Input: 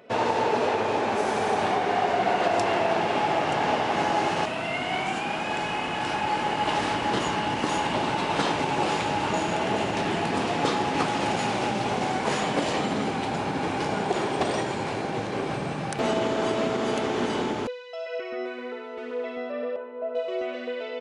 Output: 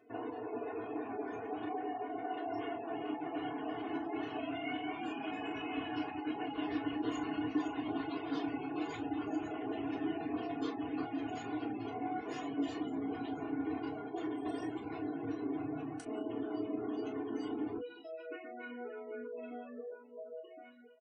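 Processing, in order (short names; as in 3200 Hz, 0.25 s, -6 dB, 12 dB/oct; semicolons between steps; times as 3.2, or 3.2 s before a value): ending faded out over 1.94 s; Doppler pass-by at 6.09, 7 m/s, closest 9 m; high shelf 9400 Hz +5 dB; multi-head echo 76 ms, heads second and third, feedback 74%, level -22.5 dB; reverb removal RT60 0.72 s; reverse; compressor 6:1, threshold -54 dBFS, peak gain reduction 27.5 dB; reverse; spectral gate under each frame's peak -20 dB strong; bell 240 Hz +9 dB 1.5 oct; notch 600 Hz, Q 12; comb 2.8 ms, depth 91%; reverb, pre-delay 3 ms, DRR 0 dB; gain +6 dB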